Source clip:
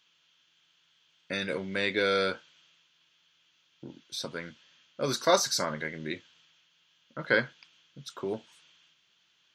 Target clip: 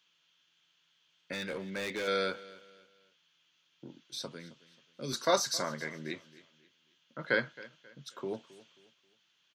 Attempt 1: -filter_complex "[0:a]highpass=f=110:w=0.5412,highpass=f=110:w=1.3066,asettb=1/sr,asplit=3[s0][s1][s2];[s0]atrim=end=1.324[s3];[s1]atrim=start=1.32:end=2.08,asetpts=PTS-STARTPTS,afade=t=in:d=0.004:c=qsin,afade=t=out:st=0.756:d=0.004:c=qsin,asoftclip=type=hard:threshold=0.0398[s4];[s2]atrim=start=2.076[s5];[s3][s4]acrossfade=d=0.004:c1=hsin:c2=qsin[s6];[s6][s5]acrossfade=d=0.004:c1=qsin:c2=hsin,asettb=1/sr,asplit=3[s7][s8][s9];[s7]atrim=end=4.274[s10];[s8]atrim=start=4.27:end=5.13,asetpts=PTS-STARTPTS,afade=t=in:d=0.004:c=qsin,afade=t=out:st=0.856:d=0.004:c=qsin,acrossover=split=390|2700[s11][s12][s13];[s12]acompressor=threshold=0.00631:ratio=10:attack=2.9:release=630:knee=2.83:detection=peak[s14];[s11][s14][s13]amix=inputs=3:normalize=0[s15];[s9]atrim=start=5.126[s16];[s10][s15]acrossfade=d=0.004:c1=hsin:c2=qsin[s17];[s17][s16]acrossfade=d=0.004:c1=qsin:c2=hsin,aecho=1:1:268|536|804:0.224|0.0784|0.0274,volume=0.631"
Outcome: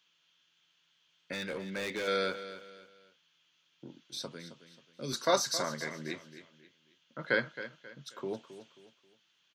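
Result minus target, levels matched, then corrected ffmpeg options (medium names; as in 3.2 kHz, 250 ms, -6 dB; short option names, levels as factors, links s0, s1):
echo-to-direct +6.5 dB
-filter_complex "[0:a]highpass=f=110:w=0.5412,highpass=f=110:w=1.3066,asettb=1/sr,asplit=3[s0][s1][s2];[s0]atrim=end=1.324[s3];[s1]atrim=start=1.32:end=2.08,asetpts=PTS-STARTPTS,afade=t=in:d=0.004:c=qsin,afade=t=out:st=0.756:d=0.004:c=qsin,asoftclip=type=hard:threshold=0.0398[s4];[s2]atrim=start=2.076[s5];[s3][s4]acrossfade=d=0.004:c1=hsin:c2=qsin[s6];[s6][s5]acrossfade=d=0.004:c1=qsin:c2=hsin,asettb=1/sr,asplit=3[s7][s8][s9];[s7]atrim=end=4.274[s10];[s8]atrim=start=4.27:end=5.13,asetpts=PTS-STARTPTS,afade=t=in:d=0.004:c=qsin,afade=t=out:st=0.856:d=0.004:c=qsin,acrossover=split=390|2700[s11][s12][s13];[s12]acompressor=threshold=0.00631:ratio=10:attack=2.9:release=630:knee=2.83:detection=peak[s14];[s11][s14][s13]amix=inputs=3:normalize=0[s15];[s9]atrim=start=5.126[s16];[s10][s15]acrossfade=d=0.004:c1=hsin:c2=qsin[s17];[s17][s16]acrossfade=d=0.004:c1=qsin:c2=hsin,aecho=1:1:268|536|804:0.106|0.0371|0.013,volume=0.631"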